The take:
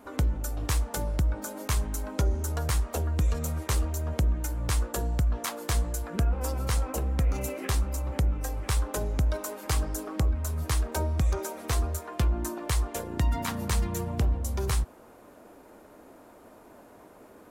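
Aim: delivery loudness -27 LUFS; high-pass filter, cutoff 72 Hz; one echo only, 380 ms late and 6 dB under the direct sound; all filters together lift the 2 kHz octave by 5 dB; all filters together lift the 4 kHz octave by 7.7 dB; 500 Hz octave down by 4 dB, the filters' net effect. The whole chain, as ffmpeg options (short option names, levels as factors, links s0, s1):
-af "highpass=72,equalizer=f=500:t=o:g=-5.5,equalizer=f=2000:t=o:g=4.5,equalizer=f=4000:t=o:g=8.5,aecho=1:1:380:0.501,volume=1.41"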